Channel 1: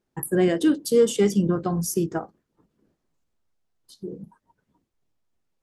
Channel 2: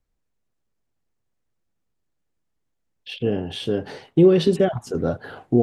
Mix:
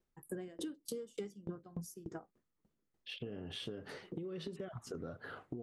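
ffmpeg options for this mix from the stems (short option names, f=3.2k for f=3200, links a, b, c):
-filter_complex "[0:a]aeval=exprs='val(0)*pow(10,-31*if(lt(mod(3.4*n/s,1),2*abs(3.4)/1000),1-mod(3.4*n/s,1)/(2*abs(3.4)/1000),(mod(3.4*n/s,1)-2*abs(3.4)/1000)/(1-2*abs(3.4)/1000))/20)':c=same,volume=-4dB[a];[1:a]equalizer=f=800:t=o:w=0.33:g=-6,equalizer=f=1.25k:t=o:w=0.33:g=8,equalizer=f=2k:t=o:w=0.33:g=4,acompressor=threshold=-23dB:ratio=6,volume=-11dB[b];[a][b]amix=inputs=2:normalize=0,acompressor=threshold=-40dB:ratio=6"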